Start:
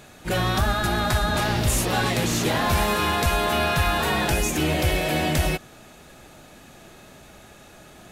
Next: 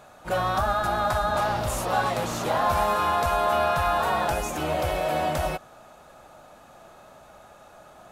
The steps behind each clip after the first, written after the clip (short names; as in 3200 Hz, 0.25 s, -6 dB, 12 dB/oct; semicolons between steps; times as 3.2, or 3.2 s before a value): band shelf 860 Hz +11 dB; gain -8.5 dB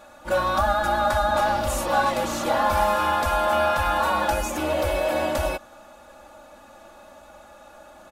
comb 3.5 ms, depth 82%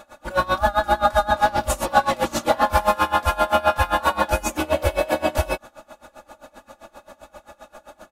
dB-linear tremolo 7.6 Hz, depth 23 dB; gain +7.5 dB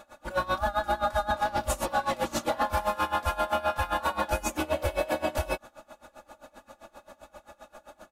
limiter -11 dBFS, peak gain reduction 6.5 dB; gain -5.5 dB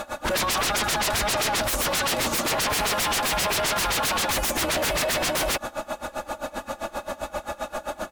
sine folder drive 20 dB, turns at -16 dBFS; gain -5 dB